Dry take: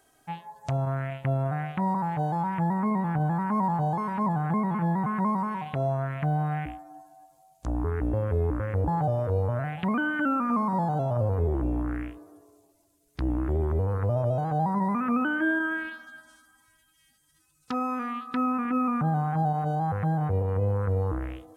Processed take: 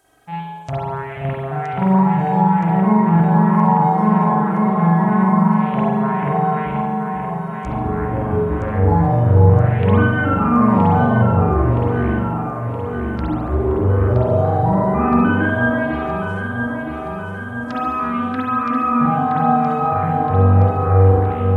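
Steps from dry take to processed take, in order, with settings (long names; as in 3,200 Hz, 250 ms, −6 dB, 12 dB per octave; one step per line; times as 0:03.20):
delay that swaps between a low-pass and a high-pass 485 ms, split 1,000 Hz, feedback 78%, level −4 dB
spring reverb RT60 1 s, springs 42 ms, chirp 30 ms, DRR −6 dB
level +2 dB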